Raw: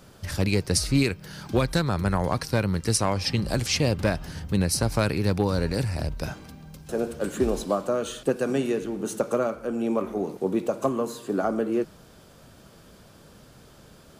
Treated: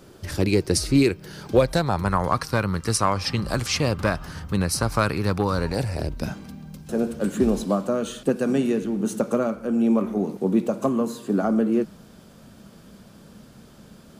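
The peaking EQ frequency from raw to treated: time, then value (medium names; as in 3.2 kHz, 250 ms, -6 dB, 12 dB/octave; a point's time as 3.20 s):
peaking EQ +10 dB 0.66 oct
1.30 s 350 Hz
2.20 s 1.2 kHz
5.59 s 1.2 kHz
6.27 s 210 Hz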